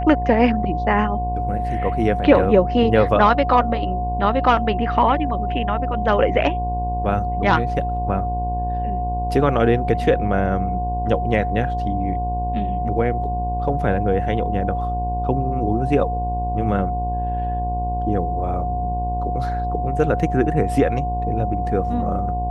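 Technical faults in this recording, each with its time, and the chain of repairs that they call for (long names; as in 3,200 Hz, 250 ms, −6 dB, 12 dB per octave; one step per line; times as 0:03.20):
mains buzz 60 Hz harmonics 18 −25 dBFS
whistle 720 Hz −24 dBFS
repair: hum removal 60 Hz, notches 18
notch filter 720 Hz, Q 30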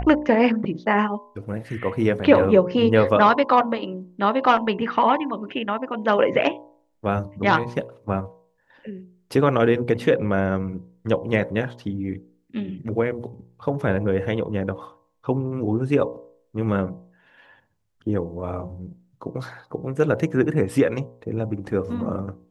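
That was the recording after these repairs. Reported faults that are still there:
none of them is left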